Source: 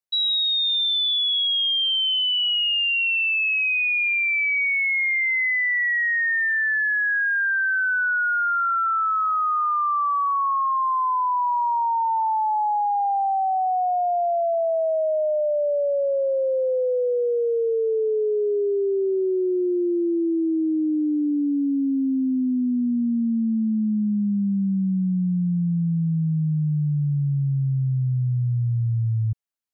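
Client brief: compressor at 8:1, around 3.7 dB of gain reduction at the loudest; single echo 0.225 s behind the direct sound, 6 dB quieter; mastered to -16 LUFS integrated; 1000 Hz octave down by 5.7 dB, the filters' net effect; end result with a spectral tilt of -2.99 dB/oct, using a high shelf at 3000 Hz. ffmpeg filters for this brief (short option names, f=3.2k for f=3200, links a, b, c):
-af "equalizer=f=1k:t=o:g=-8.5,highshelf=f=3k:g=6,acompressor=threshold=-22dB:ratio=8,aecho=1:1:225:0.501,volume=7dB"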